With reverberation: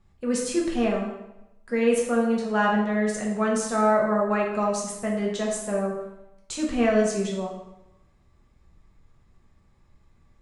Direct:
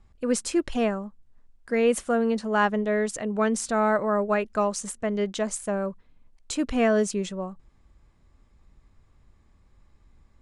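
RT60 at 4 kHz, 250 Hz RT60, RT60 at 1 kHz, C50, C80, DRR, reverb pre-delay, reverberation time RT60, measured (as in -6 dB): 0.75 s, 0.90 s, 0.90 s, 3.5 dB, 6.5 dB, -3.0 dB, 3 ms, 0.90 s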